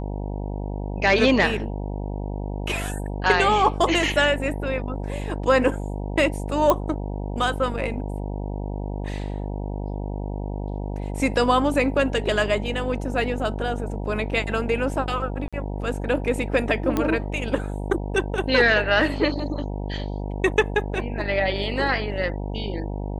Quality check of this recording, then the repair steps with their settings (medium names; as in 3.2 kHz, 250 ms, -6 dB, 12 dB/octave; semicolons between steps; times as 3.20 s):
buzz 50 Hz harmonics 19 -29 dBFS
6.70 s: pop -6 dBFS
15.48–15.53 s: dropout 46 ms
16.97 s: pop -10 dBFS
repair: de-click; de-hum 50 Hz, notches 19; interpolate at 15.48 s, 46 ms